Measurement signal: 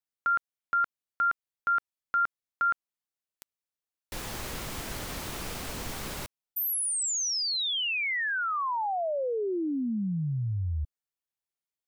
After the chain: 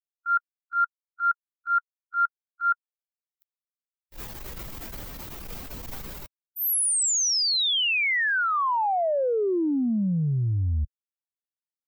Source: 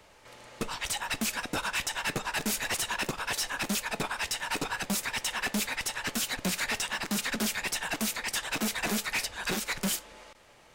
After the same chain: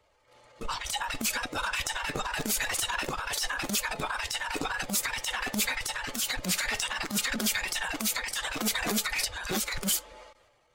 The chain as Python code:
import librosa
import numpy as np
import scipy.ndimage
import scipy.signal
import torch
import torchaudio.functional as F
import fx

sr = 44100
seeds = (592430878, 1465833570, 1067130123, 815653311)

y = fx.bin_expand(x, sr, power=1.5)
y = fx.transient(y, sr, attack_db=-12, sustain_db=7)
y = y * 10.0 ** (6.5 / 20.0)